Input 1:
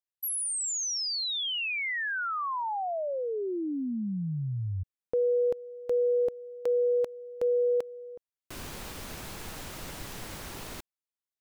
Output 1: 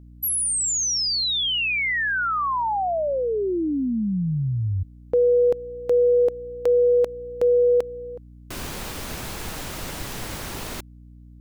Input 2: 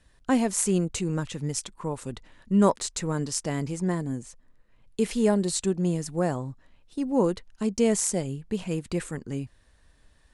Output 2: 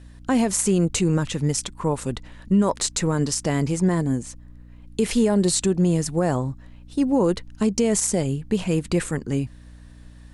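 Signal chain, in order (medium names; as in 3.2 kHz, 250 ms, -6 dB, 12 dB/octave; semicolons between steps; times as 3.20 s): peak limiter -19 dBFS; hum 60 Hz, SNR 22 dB; trim +8 dB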